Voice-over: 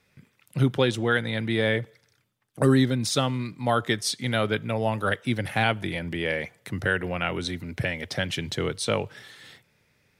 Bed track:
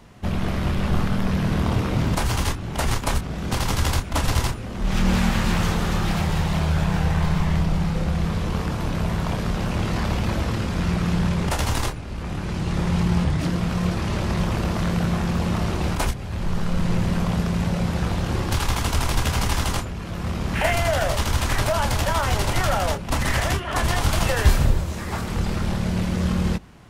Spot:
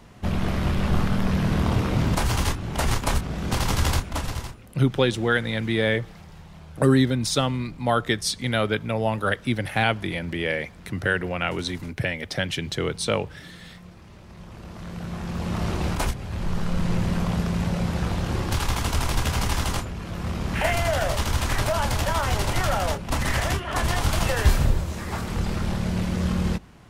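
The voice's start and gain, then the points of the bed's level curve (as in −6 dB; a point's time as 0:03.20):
4.20 s, +1.5 dB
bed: 0:03.95 −0.5 dB
0:04.95 −22.5 dB
0:14.25 −22.5 dB
0:15.68 −2 dB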